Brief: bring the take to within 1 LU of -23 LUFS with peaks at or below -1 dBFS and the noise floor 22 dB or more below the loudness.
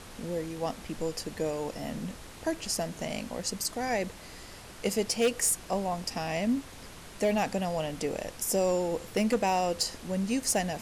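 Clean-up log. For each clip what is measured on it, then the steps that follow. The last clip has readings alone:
clipped 0.3%; flat tops at -19.5 dBFS; noise floor -47 dBFS; noise floor target -53 dBFS; loudness -31.0 LUFS; peak -19.5 dBFS; loudness target -23.0 LUFS
-> clip repair -19.5 dBFS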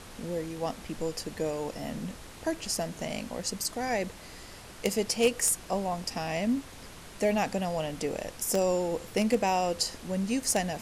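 clipped 0.0%; noise floor -47 dBFS; noise floor target -53 dBFS
-> noise print and reduce 6 dB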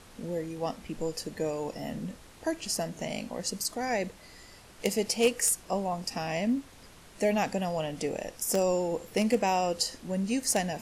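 noise floor -53 dBFS; loudness -30.5 LUFS; peak -10.5 dBFS; loudness target -23.0 LUFS
-> gain +7.5 dB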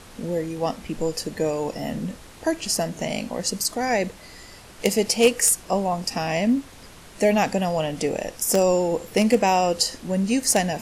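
loudness -23.0 LUFS; peak -3.0 dBFS; noise floor -45 dBFS

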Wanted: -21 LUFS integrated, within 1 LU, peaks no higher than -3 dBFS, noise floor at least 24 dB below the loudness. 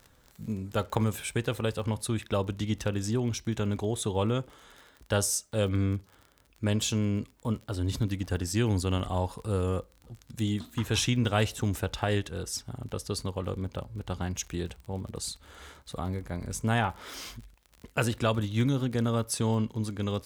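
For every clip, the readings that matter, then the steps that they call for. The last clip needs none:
ticks 36/s; loudness -30.5 LUFS; peak -10.0 dBFS; loudness target -21.0 LUFS
-> de-click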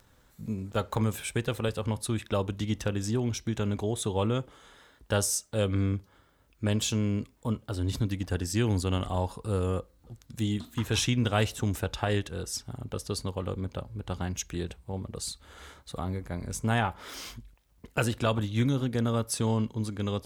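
ticks 0.44/s; loudness -30.5 LUFS; peak -10.5 dBFS; loudness target -21.0 LUFS
-> gain +9.5 dB; limiter -3 dBFS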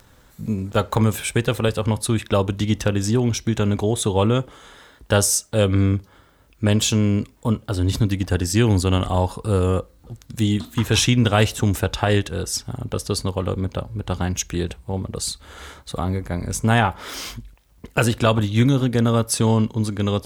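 loudness -21.0 LUFS; peak -3.0 dBFS; noise floor -54 dBFS

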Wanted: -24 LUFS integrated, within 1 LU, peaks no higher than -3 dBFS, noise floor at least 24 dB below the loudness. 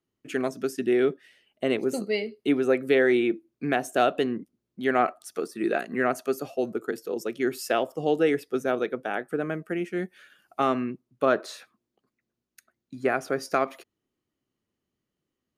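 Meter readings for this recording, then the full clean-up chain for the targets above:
loudness -27.0 LUFS; peak -10.0 dBFS; loudness target -24.0 LUFS
-> gain +3 dB

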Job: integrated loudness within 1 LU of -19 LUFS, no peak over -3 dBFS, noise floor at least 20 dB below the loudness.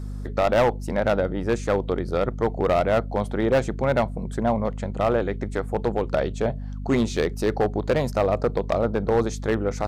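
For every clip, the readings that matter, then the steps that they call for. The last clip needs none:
clipped 1.7%; flat tops at -14.0 dBFS; hum 50 Hz; harmonics up to 250 Hz; hum level -30 dBFS; loudness -24.0 LUFS; peak -14.0 dBFS; loudness target -19.0 LUFS
-> clip repair -14 dBFS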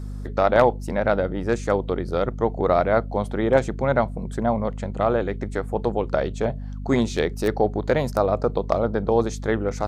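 clipped 0.0%; hum 50 Hz; harmonics up to 250 Hz; hum level -29 dBFS
-> de-hum 50 Hz, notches 5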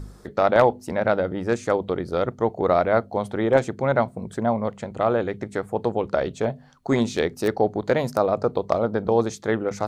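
hum none; loudness -23.5 LUFS; peak -4.5 dBFS; loudness target -19.0 LUFS
-> gain +4.5 dB; limiter -3 dBFS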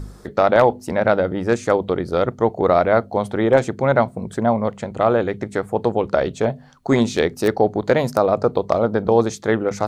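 loudness -19.5 LUFS; peak -3.0 dBFS; noise floor -43 dBFS

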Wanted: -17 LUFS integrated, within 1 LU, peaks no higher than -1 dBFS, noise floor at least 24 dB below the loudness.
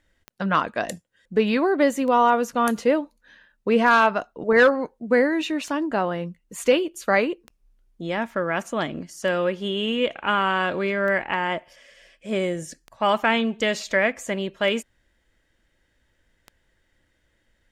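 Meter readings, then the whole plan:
clicks 10; loudness -23.0 LUFS; peak -8.0 dBFS; loudness target -17.0 LUFS
-> de-click; gain +6 dB

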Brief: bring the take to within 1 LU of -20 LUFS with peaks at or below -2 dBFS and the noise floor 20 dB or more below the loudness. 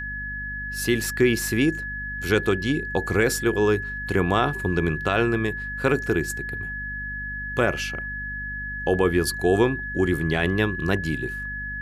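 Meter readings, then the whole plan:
hum 50 Hz; harmonics up to 250 Hz; hum level -34 dBFS; steady tone 1700 Hz; tone level -30 dBFS; loudness -24.0 LUFS; peak -8.0 dBFS; loudness target -20.0 LUFS
-> de-hum 50 Hz, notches 5; notch 1700 Hz, Q 30; gain +4 dB

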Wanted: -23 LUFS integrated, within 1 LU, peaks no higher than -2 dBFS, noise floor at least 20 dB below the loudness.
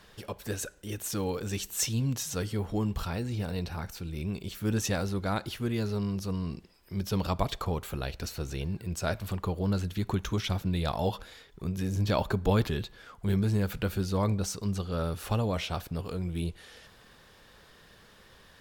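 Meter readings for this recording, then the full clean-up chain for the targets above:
loudness -32.0 LUFS; peak -13.0 dBFS; loudness target -23.0 LUFS
-> gain +9 dB

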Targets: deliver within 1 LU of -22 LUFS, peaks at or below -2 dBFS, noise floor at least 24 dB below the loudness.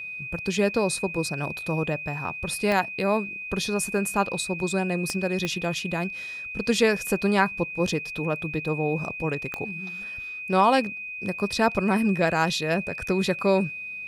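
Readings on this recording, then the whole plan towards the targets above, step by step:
clicks 4; steady tone 2500 Hz; tone level -33 dBFS; loudness -25.5 LUFS; peak -7.5 dBFS; loudness target -22.0 LUFS
-> de-click; notch 2500 Hz, Q 30; gain +3.5 dB

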